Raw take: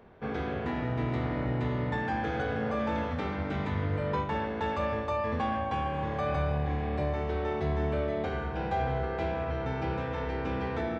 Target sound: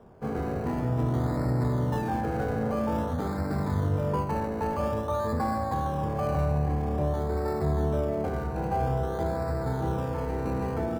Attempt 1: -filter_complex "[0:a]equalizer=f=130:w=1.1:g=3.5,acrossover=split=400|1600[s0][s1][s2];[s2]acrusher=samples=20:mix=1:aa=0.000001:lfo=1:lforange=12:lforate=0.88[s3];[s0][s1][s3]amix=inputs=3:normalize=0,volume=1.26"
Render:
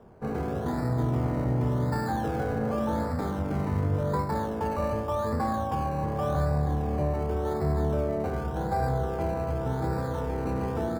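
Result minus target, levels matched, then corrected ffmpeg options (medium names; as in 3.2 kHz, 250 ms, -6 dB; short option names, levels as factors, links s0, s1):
decimation with a swept rate: distortion +4 dB
-filter_complex "[0:a]equalizer=f=130:w=1.1:g=3.5,acrossover=split=400|1600[s0][s1][s2];[s2]acrusher=samples=20:mix=1:aa=0.000001:lfo=1:lforange=12:lforate=0.5[s3];[s0][s1][s3]amix=inputs=3:normalize=0,volume=1.26"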